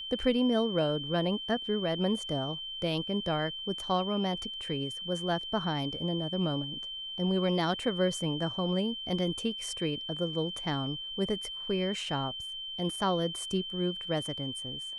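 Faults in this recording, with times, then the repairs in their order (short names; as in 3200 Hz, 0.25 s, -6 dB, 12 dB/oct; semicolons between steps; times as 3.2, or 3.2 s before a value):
tone 3100 Hz -37 dBFS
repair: notch 3100 Hz, Q 30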